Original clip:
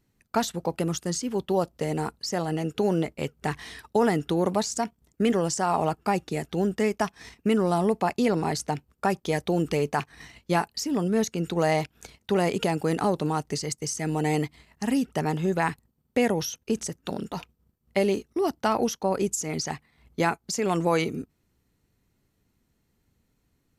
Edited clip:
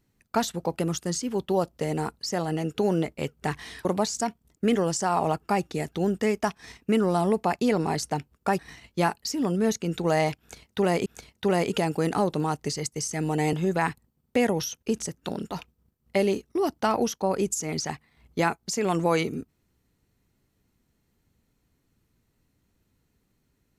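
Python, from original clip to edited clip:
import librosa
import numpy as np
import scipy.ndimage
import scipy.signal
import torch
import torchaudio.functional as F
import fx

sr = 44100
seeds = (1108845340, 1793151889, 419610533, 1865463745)

y = fx.edit(x, sr, fx.cut(start_s=3.85, length_s=0.57),
    fx.cut(start_s=9.16, length_s=0.95),
    fx.repeat(start_s=11.92, length_s=0.66, count=2),
    fx.cut(start_s=14.39, length_s=0.95), tone=tone)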